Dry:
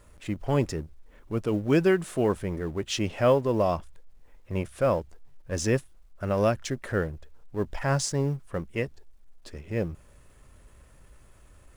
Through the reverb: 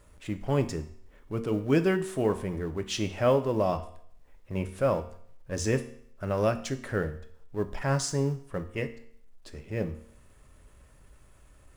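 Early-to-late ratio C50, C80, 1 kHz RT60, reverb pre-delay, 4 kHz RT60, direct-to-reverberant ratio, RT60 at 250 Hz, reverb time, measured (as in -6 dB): 13.5 dB, 16.5 dB, 0.65 s, 4 ms, 0.60 s, 8.5 dB, 0.65 s, 0.65 s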